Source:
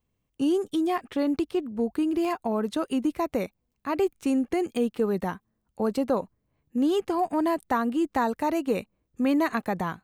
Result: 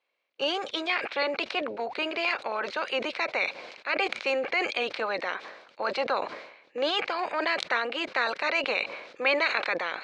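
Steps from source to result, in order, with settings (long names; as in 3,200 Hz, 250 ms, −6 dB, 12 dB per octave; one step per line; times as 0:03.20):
ceiling on every frequency bin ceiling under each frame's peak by 20 dB
loudspeaker in its box 500–4,700 Hz, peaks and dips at 550 Hz +7 dB, 1,500 Hz +4 dB, 2,300 Hz +10 dB, 4,100 Hz +6 dB
level that may fall only so fast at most 67 dB per second
level −4 dB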